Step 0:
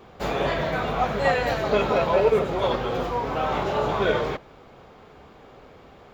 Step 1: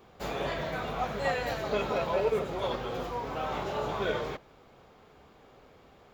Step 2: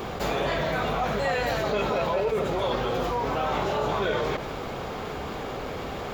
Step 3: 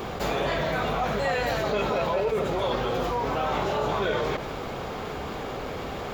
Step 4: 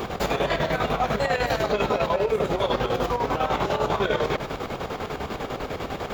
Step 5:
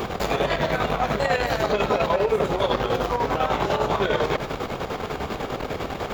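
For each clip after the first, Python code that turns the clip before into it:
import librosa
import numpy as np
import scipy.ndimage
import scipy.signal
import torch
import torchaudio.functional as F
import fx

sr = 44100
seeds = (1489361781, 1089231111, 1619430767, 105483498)

y1 = fx.high_shelf(x, sr, hz=5600.0, db=7.5)
y1 = y1 * librosa.db_to_amplitude(-8.5)
y2 = fx.env_flatten(y1, sr, amount_pct=70)
y3 = y2
y4 = fx.chopper(y3, sr, hz=10.0, depth_pct=60, duty_pct=60)
y4 = y4 * librosa.db_to_amplitude(4.0)
y5 = fx.transformer_sat(y4, sr, knee_hz=570.0)
y5 = y5 * librosa.db_to_amplitude(3.0)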